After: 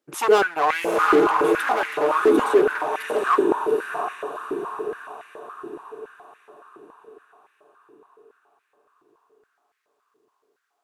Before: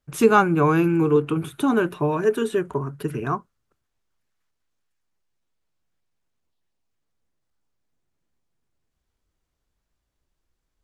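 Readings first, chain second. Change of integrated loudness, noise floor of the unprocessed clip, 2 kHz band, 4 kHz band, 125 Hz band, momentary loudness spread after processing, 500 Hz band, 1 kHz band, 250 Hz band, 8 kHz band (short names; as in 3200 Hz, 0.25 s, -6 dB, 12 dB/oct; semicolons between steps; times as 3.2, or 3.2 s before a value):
+0.5 dB, -78 dBFS, +5.0 dB, +5.5 dB, -20.0 dB, 21 LU, +3.0 dB, +4.5 dB, -3.5 dB, +2.0 dB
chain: diffused feedback echo 0.776 s, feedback 47%, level -3 dB; hard clip -18.5 dBFS, distortion -8 dB; stepped high-pass 7.1 Hz 340–2000 Hz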